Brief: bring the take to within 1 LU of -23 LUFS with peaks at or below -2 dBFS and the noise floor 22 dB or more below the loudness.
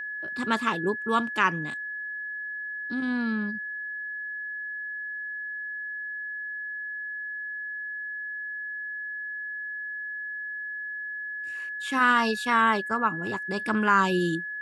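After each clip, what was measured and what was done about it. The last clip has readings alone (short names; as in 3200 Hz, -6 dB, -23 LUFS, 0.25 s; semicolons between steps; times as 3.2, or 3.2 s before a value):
steady tone 1700 Hz; tone level -32 dBFS; loudness -28.5 LUFS; peak -8.5 dBFS; loudness target -23.0 LUFS
-> notch 1700 Hz, Q 30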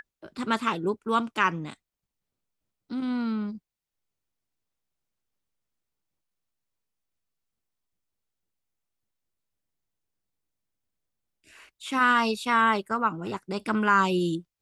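steady tone none; loudness -26.0 LUFS; peak -8.5 dBFS; loudness target -23.0 LUFS
-> gain +3 dB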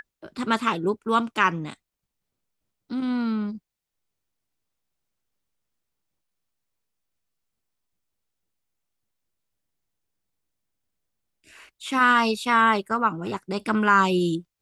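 loudness -23.0 LUFS; peak -5.5 dBFS; noise floor -84 dBFS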